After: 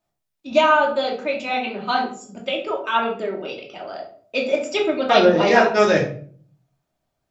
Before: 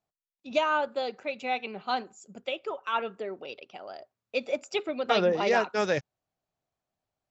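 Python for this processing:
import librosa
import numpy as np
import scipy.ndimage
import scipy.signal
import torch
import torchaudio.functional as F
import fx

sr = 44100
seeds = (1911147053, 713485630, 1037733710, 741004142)

y = fx.room_shoebox(x, sr, seeds[0], volume_m3=490.0, walls='furnished', distance_m=2.7)
y = F.gain(torch.from_numpy(y), 5.5).numpy()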